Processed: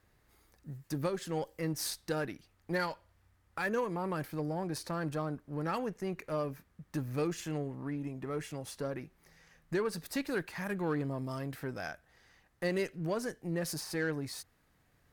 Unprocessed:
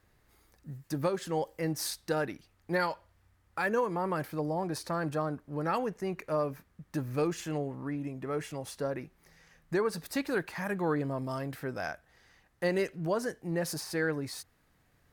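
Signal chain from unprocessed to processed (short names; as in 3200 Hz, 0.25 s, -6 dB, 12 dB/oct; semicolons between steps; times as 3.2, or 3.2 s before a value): dynamic EQ 810 Hz, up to -4 dB, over -43 dBFS, Q 0.74; added harmonics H 8 -30 dB, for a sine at -19.5 dBFS; gain -1.5 dB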